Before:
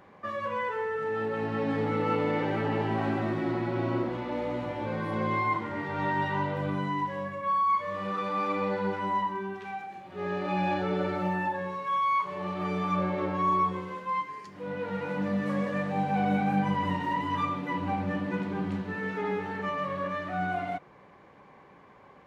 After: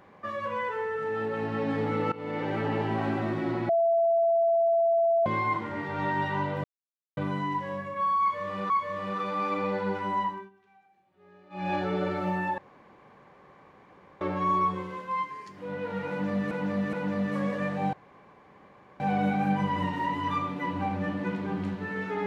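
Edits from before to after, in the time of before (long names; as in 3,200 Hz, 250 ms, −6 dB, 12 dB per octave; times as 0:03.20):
0:02.12–0:02.70: fade in equal-power, from −20 dB
0:03.69–0:05.26: beep over 671 Hz −20 dBFS
0:06.64: splice in silence 0.53 s
0:07.68–0:08.17: repeat, 2 plays
0:09.24–0:10.72: duck −23.5 dB, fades 0.24 s
0:11.56–0:13.19: fill with room tone
0:15.07–0:15.49: repeat, 3 plays
0:16.07: splice in room tone 1.07 s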